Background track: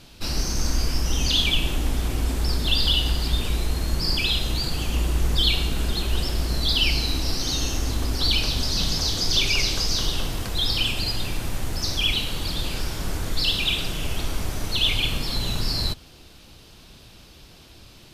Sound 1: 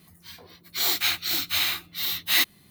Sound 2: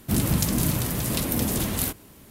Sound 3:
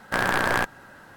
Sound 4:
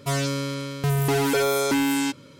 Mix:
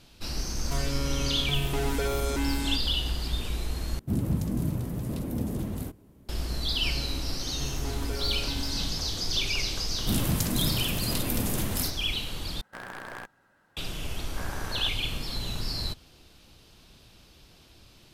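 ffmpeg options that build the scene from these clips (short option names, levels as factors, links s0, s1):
-filter_complex "[4:a]asplit=2[s0][s1];[2:a]asplit=2[s2][s3];[3:a]asplit=2[s4][s5];[0:a]volume=0.447[s6];[s0]alimiter=limit=0.0891:level=0:latency=1:release=71[s7];[s2]tiltshelf=f=920:g=8.5[s8];[s5]lowpass=1800[s9];[s6]asplit=3[s10][s11][s12];[s10]atrim=end=3.994[s13];[s8]atrim=end=2.3,asetpts=PTS-STARTPTS,volume=0.266[s14];[s11]atrim=start=6.286:end=12.614[s15];[s4]atrim=end=1.16,asetpts=PTS-STARTPTS,volume=0.133[s16];[s12]atrim=start=13.766[s17];[s7]atrim=end=2.39,asetpts=PTS-STARTPTS,volume=0.794,afade=t=in:d=0.004:c=hsin,afade=t=out:st=2.386:d=0.004:c=hsin,adelay=650[s18];[s1]atrim=end=2.39,asetpts=PTS-STARTPTS,volume=0.133,afade=t=in:d=0.004:c=hsin,afade=t=out:st=2.386:d=0.004:c=hsin,adelay=6760[s19];[s3]atrim=end=2.3,asetpts=PTS-STARTPTS,volume=0.596,afade=t=in:d=0.004:c=hsin,afade=t=out:st=2.296:d=0.004:c=hsin,adelay=9980[s20];[s9]atrim=end=1.16,asetpts=PTS-STARTPTS,volume=0.168,afade=t=in:d=0.004:c=hsin,afade=t=out:st=1.156:d=0.004:c=hsin,adelay=14240[s21];[s13][s14]acrossfade=d=0.004:c1=hsin:c2=hsin[s22];[s22][s15]acrossfade=d=0.004:c1=hsin:c2=hsin[s23];[s23][s16]acrossfade=d=0.004:c1=hsin:c2=hsin[s24];[s24][s17]acrossfade=d=0.004:c1=hsin:c2=hsin[s25];[s25][s18][s19][s20][s21]amix=inputs=5:normalize=0"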